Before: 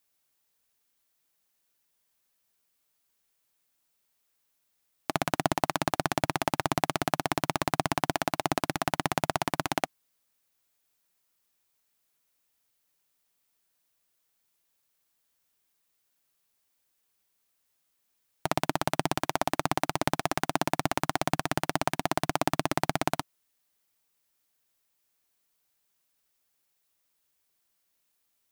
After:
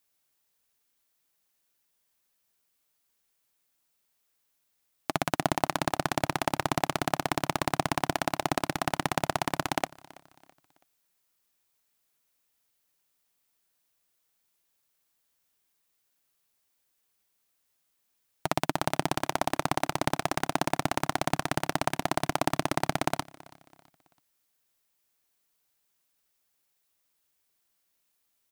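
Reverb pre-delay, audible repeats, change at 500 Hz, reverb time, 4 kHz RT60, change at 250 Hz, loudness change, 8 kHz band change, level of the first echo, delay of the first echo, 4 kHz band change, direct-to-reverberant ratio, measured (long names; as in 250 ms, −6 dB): no reverb audible, 2, 0.0 dB, no reverb audible, no reverb audible, 0.0 dB, 0.0 dB, 0.0 dB, −22.5 dB, 329 ms, 0.0 dB, no reverb audible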